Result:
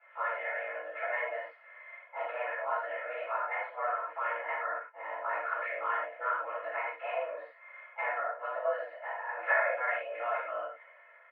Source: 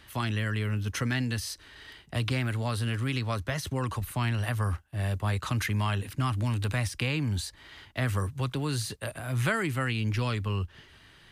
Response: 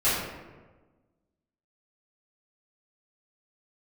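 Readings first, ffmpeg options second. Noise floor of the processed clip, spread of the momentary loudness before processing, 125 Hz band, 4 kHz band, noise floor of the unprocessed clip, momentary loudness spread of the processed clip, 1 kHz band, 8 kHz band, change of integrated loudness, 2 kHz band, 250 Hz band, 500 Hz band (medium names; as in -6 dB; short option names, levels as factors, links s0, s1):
-58 dBFS, 6 LU, under -40 dB, -20.5 dB, -56 dBFS, 9 LU, +3.5 dB, under -40 dB, -4.0 dB, +1.0 dB, under -30 dB, +2.5 dB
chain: -filter_complex "[0:a]tremolo=f=150:d=0.824,aecho=1:1:2.6:0.8,highpass=f=440:t=q:w=0.5412,highpass=f=440:t=q:w=1.307,lowpass=f=2000:t=q:w=0.5176,lowpass=f=2000:t=q:w=0.7071,lowpass=f=2000:t=q:w=1.932,afreqshift=210,aemphasis=mode=reproduction:type=riaa[s0];[1:a]atrim=start_sample=2205,afade=t=out:st=0.19:d=0.01,atrim=end_sample=8820[s1];[s0][s1]afir=irnorm=-1:irlink=0,volume=0.398"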